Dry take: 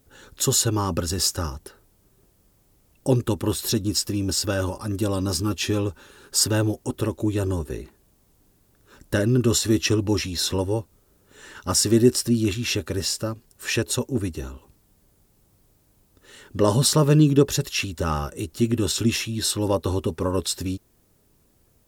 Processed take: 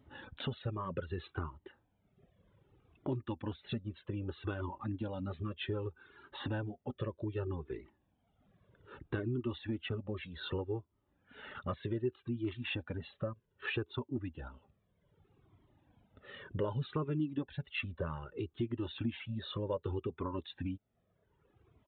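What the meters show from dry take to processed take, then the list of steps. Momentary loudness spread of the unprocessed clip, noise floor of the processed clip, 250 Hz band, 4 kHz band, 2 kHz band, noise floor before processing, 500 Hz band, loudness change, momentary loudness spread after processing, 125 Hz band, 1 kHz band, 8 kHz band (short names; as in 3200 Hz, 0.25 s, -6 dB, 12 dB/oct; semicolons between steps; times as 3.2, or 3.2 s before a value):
12 LU, -78 dBFS, -16.0 dB, -20.0 dB, -12.0 dB, -62 dBFS, -15.0 dB, -16.5 dB, 9 LU, -15.0 dB, -13.5 dB, under -40 dB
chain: reverb removal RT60 1.1 s; HPF 89 Hz 12 dB/oct; high shelf 2500 Hz -8 dB; downsampling 8000 Hz; compressor 2.5:1, threshold -41 dBFS, peak gain reduction 19 dB; cascading flanger falling 0.64 Hz; gain +5.5 dB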